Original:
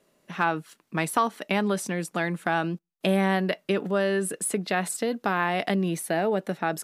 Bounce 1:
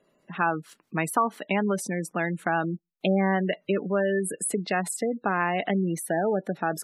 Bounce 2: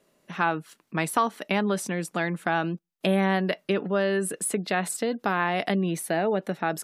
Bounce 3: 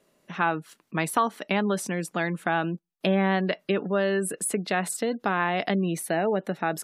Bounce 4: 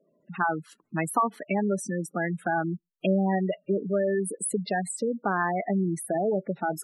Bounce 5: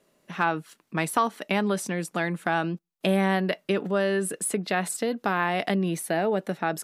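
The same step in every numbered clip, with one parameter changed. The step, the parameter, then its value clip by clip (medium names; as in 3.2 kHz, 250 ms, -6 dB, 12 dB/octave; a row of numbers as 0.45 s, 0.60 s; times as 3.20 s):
spectral gate, under each frame's peak: -20 dB, -45 dB, -35 dB, -10 dB, -60 dB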